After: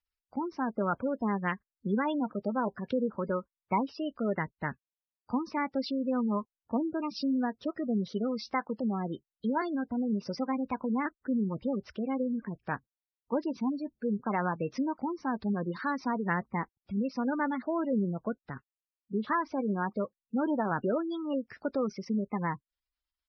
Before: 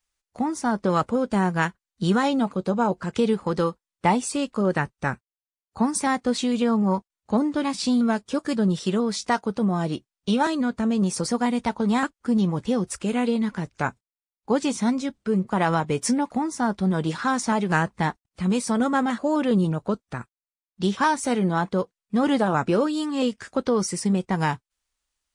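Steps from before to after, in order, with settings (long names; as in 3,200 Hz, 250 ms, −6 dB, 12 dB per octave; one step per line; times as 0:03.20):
downsampling to 11,025 Hz
wrong playback speed 44.1 kHz file played as 48 kHz
gate on every frequency bin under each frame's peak −20 dB strong
level −8 dB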